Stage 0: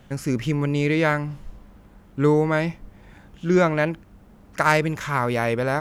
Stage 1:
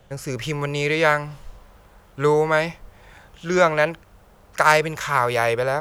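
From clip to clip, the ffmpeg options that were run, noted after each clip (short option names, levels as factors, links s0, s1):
-filter_complex "[0:a]equalizer=f=250:t=o:w=1:g=-11,equalizer=f=500:t=o:w=1:g=6,equalizer=f=2000:t=o:w=1:g=-3,acrossover=split=520|810[s0][s1][s2];[s2]dynaudnorm=f=130:g=5:m=2.51[s3];[s0][s1][s3]amix=inputs=3:normalize=0,volume=0.891"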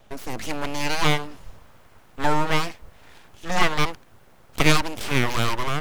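-af "aeval=exprs='abs(val(0))':c=same"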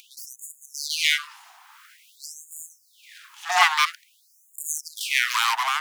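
-af "acompressor=mode=upward:threshold=0.0112:ratio=2.5,afftfilt=real='re*gte(b*sr/1024,670*pow(6800/670,0.5+0.5*sin(2*PI*0.49*pts/sr)))':imag='im*gte(b*sr/1024,670*pow(6800/670,0.5+0.5*sin(2*PI*0.49*pts/sr)))':win_size=1024:overlap=0.75,volume=1.78"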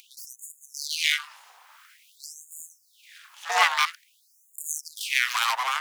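-af "tremolo=f=250:d=0.571"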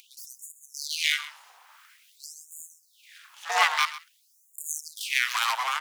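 -af "aecho=1:1:130:0.158,volume=0.841"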